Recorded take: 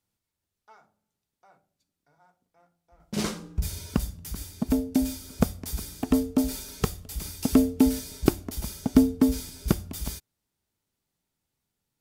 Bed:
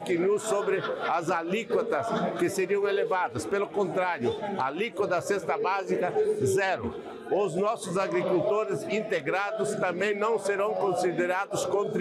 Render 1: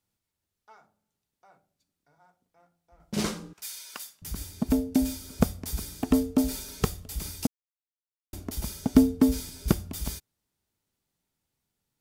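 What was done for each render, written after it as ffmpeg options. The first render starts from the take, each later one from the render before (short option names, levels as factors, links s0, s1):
-filter_complex "[0:a]asettb=1/sr,asplit=3[s0][s1][s2];[s0]atrim=end=3.534[s3];[s1]atrim=start=3.53:end=4.22,asetpts=PTS-STARTPTS,afade=t=in:d=0.004:c=qsin,afade=t=out:st=0.686:d=0.004:c=qsin,highpass=1300[s4];[s2]atrim=start=4.216[s5];[s3][s4]acrossfade=d=0.004:c1=hsin:c2=qsin[s6];[s6][s5]acrossfade=d=0.004:c1=qsin:c2=hsin,asplit=3[s7][s8][s9];[s7]atrim=end=7.47,asetpts=PTS-STARTPTS,afade=t=out:st=7.466:d=0.004:c=hsin[s10];[s8]atrim=start=7.47:end=8.33,asetpts=PTS-STARTPTS,volume=0[s11];[s9]atrim=start=8.33,asetpts=PTS-STARTPTS,afade=t=in:d=0.004:c=hsin[s12];[s10][s11][s12]concat=n=3:v=0:a=1"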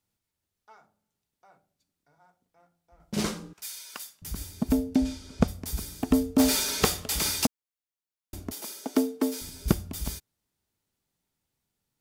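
-filter_complex "[0:a]asplit=3[s0][s1][s2];[s0]afade=t=out:st=4.94:d=0.02[s3];[s1]lowpass=5400,afade=t=in:st=4.94:d=0.02,afade=t=out:st=5.47:d=0.02[s4];[s2]afade=t=in:st=5.47:d=0.02[s5];[s3][s4][s5]amix=inputs=3:normalize=0,asplit=3[s6][s7][s8];[s6]afade=t=out:st=6.38:d=0.02[s9];[s7]asplit=2[s10][s11];[s11]highpass=f=720:p=1,volume=14.1,asoftclip=type=tanh:threshold=0.355[s12];[s10][s12]amix=inputs=2:normalize=0,lowpass=f=5200:p=1,volume=0.501,afade=t=in:st=6.38:d=0.02,afade=t=out:st=7.45:d=0.02[s13];[s8]afade=t=in:st=7.45:d=0.02[s14];[s9][s13][s14]amix=inputs=3:normalize=0,asettb=1/sr,asplit=3[s15][s16][s17];[s15]atrim=end=8.524[s18];[s16]atrim=start=8.52:end=9.41,asetpts=PTS-STARTPTS,afade=t=in:d=0.004:c=qsin,afade=t=out:st=0.886:d=0.004:c=qsin,highpass=f=310:w=0.5412,highpass=f=310:w=1.3066[s19];[s17]atrim=start=9.406[s20];[s18][s19]acrossfade=d=0.004:c1=hsin:c2=qsin[s21];[s21][s20]acrossfade=d=0.004:c1=qsin:c2=hsin"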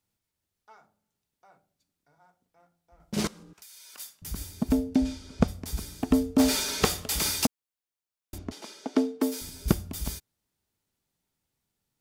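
-filter_complex "[0:a]asettb=1/sr,asplit=3[s0][s1][s2];[s0]atrim=end=3.274[s3];[s1]atrim=start=3.27:end=3.98,asetpts=PTS-STARTPTS,afade=t=in:d=0.004:c=qsin,afade=t=out:st=0.706:d=0.004:c=qsin,acompressor=threshold=0.00562:ratio=20:attack=3.2:release=140:knee=1:detection=peak[s4];[s2]atrim=start=3.976[s5];[s3][s4]acrossfade=d=0.004:c1=hsin:c2=qsin[s6];[s6][s5]acrossfade=d=0.004:c1=qsin:c2=hsin,asettb=1/sr,asplit=3[s7][s8][s9];[s7]atrim=end=4.694[s10];[s8]atrim=start=4.69:end=6.9,asetpts=PTS-STARTPTS,afade=t=in:d=0.004:c=qsin,afade=t=out:st=2.206:d=0.004:c=qsin,highshelf=f=10000:g=-7[s11];[s9]atrim=start=6.896[s12];[s10][s11]acrossfade=d=0.004:c1=hsin:c2=qsin[s13];[s13][s12]acrossfade=d=0.004:c1=qsin:c2=hsin,asettb=1/sr,asplit=3[s14][s15][s16];[s14]atrim=end=8.384[s17];[s15]atrim=start=8.38:end=9.21,asetpts=PTS-STARTPTS,afade=t=in:d=0.004:c=qsin,afade=t=out:st=0.826:d=0.004:c=qsin,lowpass=4900[s18];[s16]atrim=start=9.206[s19];[s17][s18]acrossfade=d=0.004:c1=hsin:c2=qsin[s20];[s20][s19]acrossfade=d=0.004:c1=qsin:c2=hsin"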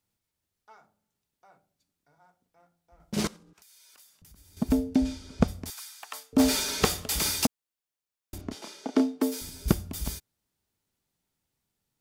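-filter_complex "[0:a]asettb=1/sr,asplit=3[s0][s1][s2];[s0]atrim=end=3.364[s3];[s1]atrim=start=3.36:end=4.57,asetpts=PTS-STARTPTS,afade=t=in:d=0.004:c=qsin,afade=t=out:st=1.206:d=0.004:c=qsin,acompressor=threshold=0.002:ratio=5:attack=3.2:release=140:knee=1:detection=peak[s4];[s2]atrim=start=4.566[s5];[s3][s4]acrossfade=d=0.004:c1=hsin:c2=qsin[s6];[s6][s5]acrossfade=d=0.004:c1=qsin:c2=hsin,asettb=1/sr,asplit=3[s7][s8][s9];[s7]atrim=end=5.704[s10];[s8]atrim=start=5.7:end=6.33,asetpts=PTS-STARTPTS,afade=t=in:d=0.004:c=qsin,afade=t=out:st=0.626:d=0.004:c=qsin,highpass=f=990:w=0.5412,highpass=f=990:w=1.3066[s11];[s9]atrim=start=6.326[s12];[s10][s11]acrossfade=d=0.004:c1=hsin:c2=qsin[s13];[s13][s12]acrossfade=d=0.004:c1=qsin:c2=hsin,asettb=1/sr,asplit=3[s14][s15][s16];[s14]atrim=end=8.364[s17];[s15]atrim=start=8.36:end=9.22,asetpts=PTS-STARTPTS,afade=t=in:d=0.004:c=qsin,afade=t=out:st=0.856:d=0.004:c=qsin,asplit=2[s18][s19];[s19]adelay=30,volume=0.422[s20];[s18][s20]amix=inputs=2:normalize=0,atrim=end_sample=37926[s21];[s16]atrim=start=9.216[s22];[s17][s21]acrossfade=d=0.004:c1=hsin:c2=qsin[s23];[s23][s22]acrossfade=d=0.004:c1=qsin:c2=hsin"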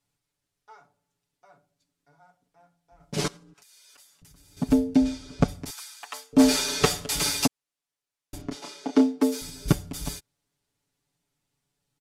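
-af "lowpass=11000,aecho=1:1:7:0.94"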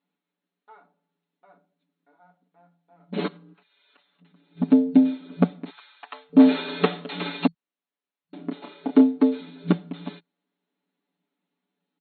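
-af "afftfilt=real='re*between(b*sr/4096,170,4300)':imag='im*between(b*sr/4096,170,4300)':win_size=4096:overlap=0.75,aemphasis=mode=reproduction:type=bsi"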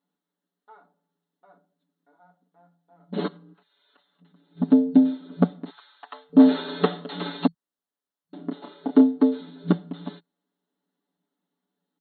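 -af "equalizer=f=2400:t=o:w=0.34:g=-15"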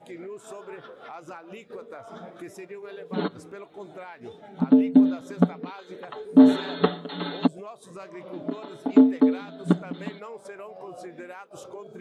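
-filter_complex "[1:a]volume=0.2[s0];[0:a][s0]amix=inputs=2:normalize=0"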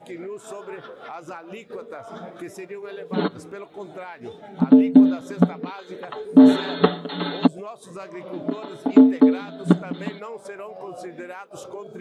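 -af "volume=1.68,alimiter=limit=0.794:level=0:latency=1"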